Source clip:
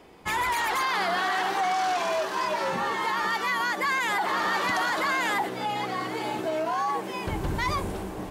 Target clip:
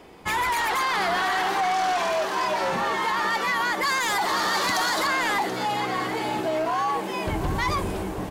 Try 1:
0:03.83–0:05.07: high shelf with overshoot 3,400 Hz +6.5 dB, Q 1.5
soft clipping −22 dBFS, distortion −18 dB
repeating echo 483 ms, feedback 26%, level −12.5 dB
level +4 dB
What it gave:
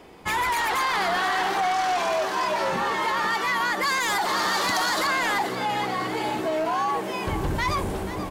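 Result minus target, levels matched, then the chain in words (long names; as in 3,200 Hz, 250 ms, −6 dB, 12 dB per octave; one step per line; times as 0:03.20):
echo 248 ms early
0:03.83–0:05.07: high shelf with overshoot 3,400 Hz +6.5 dB, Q 1.5
soft clipping −22 dBFS, distortion −18 dB
repeating echo 731 ms, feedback 26%, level −12.5 dB
level +4 dB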